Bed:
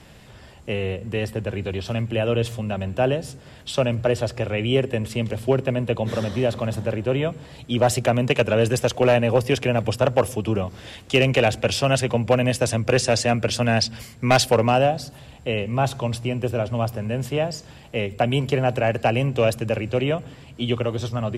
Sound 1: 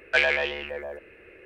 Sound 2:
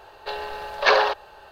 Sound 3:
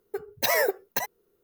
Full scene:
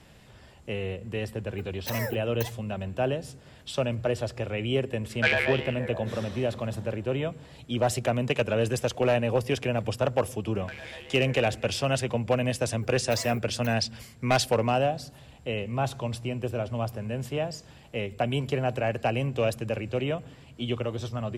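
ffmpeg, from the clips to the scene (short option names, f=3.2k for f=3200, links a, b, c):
-filter_complex "[3:a]asplit=2[a][b];[1:a]asplit=2[c][d];[0:a]volume=-6.5dB[e];[d]acompressor=threshold=-31dB:ratio=12:attack=1.1:release=331:knee=1:detection=rms[f];[a]atrim=end=1.43,asetpts=PTS-STARTPTS,volume=-10dB,afade=t=in:d=0.004:c=hsin,afade=t=out:st=1.426:d=0.004:c=hsin,adelay=1440[g];[c]atrim=end=1.45,asetpts=PTS-STARTPTS,volume=-2.5dB,afade=t=in:d=0.004:c=hsin,afade=t=out:st=1.446:d=0.004:c=hsin,adelay=224469S[h];[f]atrim=end=1.45,asetpts=PTS-STARTPTS,volume=-3dB,afade=t=in:d=0.004:c=hsin,afade=t=out:st=1.446:d=0.004:c=hsin,adelay=10550[i];[b]atrim=end=1.43,asetpts=PTS-STARTPTS,volume=-17.5dB,afade=t=in:d=0.004:c=hsin,afade=t=out:st=1.426:d=0.004:c=hsin,adelay=559188S[j];[e][g][h][i][j]amix=inputs=5:normalize=0"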